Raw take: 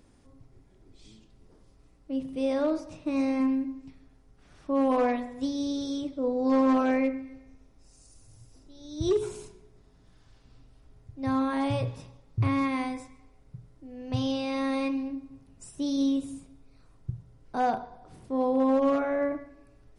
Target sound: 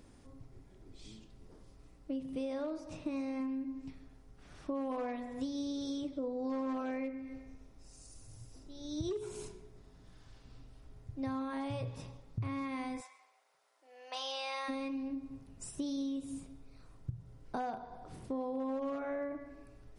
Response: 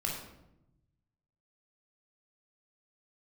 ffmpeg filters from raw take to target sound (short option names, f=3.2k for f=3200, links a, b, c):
-filter_complex "[0:a]asplit=3[a][b][c];[a]afade=t=out:st=13:d=0.02[d];[b]highpass=f=670:w=0.5412,highpass=f=670:w=1.3066,afade=t=in:st=13:d=0.02,afade=t=out:st=14.68:d=0.02[e];[c]afade=t=in:st=14.68:d=0.02[f];[d][e][f]amix=inputs=3:normalize=0,acompressor=threshold=-36dB:ratio=8,volume=1dB"